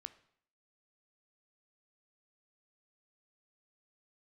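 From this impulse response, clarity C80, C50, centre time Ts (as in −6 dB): 18.5 dB, 15.5 dB, 4 ms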